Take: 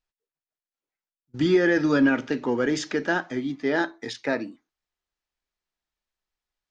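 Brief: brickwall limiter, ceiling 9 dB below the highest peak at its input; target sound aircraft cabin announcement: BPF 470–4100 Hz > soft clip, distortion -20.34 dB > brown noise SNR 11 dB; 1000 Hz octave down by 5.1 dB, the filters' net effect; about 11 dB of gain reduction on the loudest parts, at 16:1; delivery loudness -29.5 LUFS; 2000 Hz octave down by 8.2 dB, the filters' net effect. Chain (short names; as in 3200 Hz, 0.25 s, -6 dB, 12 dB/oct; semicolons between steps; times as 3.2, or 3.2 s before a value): bell 1000 Hz -4 dB; bell 2000 Hz -9 dB; compressor 16:1, threshold -26 dBFS; limiter -27.5 dBFS; BPF 470–4100 Hz; soft clip -33.5 dBFS; brown noise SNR 11 dB; gain +14 dB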